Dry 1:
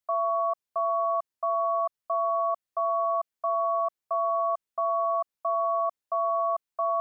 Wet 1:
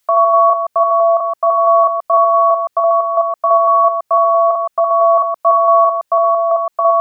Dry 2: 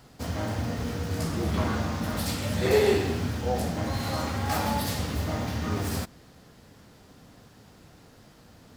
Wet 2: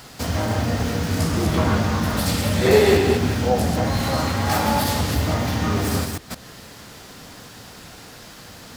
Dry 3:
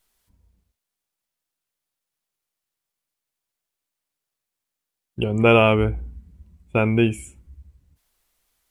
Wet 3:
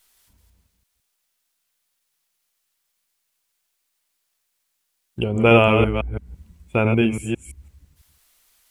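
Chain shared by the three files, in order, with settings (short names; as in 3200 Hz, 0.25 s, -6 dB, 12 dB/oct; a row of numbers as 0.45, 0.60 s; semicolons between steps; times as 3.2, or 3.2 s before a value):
reverse delay 0.167 s, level -5.5 dB; mismatched tape noise reduction encoder only; normalise peaks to -3 dBFS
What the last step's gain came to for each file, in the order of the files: +14.0, +7.0, 0.0 dB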